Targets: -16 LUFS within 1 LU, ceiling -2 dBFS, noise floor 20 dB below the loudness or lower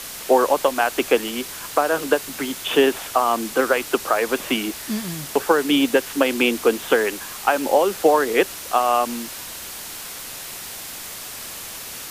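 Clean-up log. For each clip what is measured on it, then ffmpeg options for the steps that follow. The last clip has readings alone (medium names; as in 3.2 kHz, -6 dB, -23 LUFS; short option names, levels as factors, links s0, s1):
noise floor -35 dBFS; noise floor target -41 dBFS; loudness -21.0 LUFS; peak level -4.0 dBFS; loudness target -16.0 LUFS
-> -af "afftdn=nr=6:nf=-35"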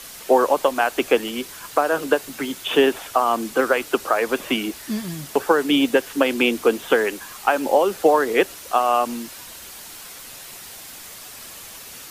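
noise floor -39 dBFS; noise floor target -41 dBFS
-> -af "afftdn=nr=6:nf=-39"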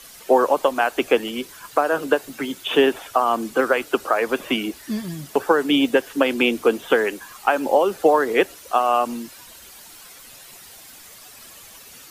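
noise floor -44 dBFS; loudness -20.5 LUFS; peak level -4.5 dBFS; loudness target -16.0 LUFS
-> -af "volume=1.68,alimiter=limit=0.794:level=0:latency=1"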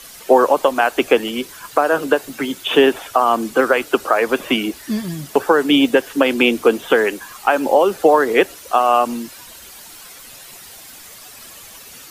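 loudness -16.5 LUFS; peak level -2.0 dBFS; noise floor -40 dBFS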